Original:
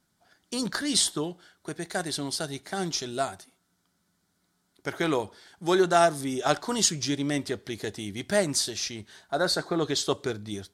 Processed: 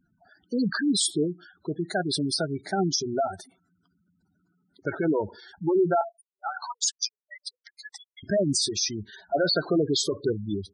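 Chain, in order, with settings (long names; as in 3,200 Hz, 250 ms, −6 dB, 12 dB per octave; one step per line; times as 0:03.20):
brickwall limiter −19 dBFS, peak gain reduction 10.5 dB
gate on every frequency bin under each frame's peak −10 dB strong
0:06.01–0:08.23: Butterworth high-pass 780 Hz 72 dB per octave
level +6.5 dB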